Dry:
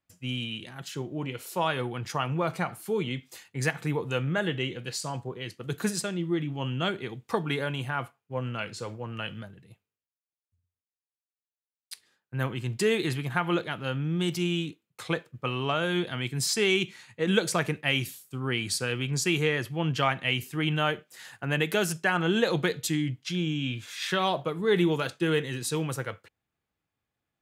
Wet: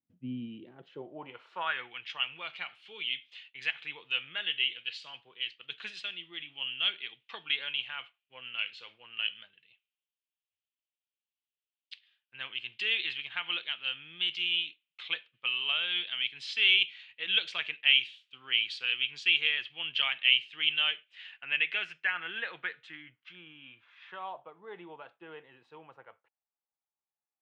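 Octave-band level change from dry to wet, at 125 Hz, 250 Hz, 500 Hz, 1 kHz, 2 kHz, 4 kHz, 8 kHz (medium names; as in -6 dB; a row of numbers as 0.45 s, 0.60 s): under -25 dB, -20.5 dB, -21.0 dB, -11.5 dB, 0.0 dB, +5.0 dB, under -25 dB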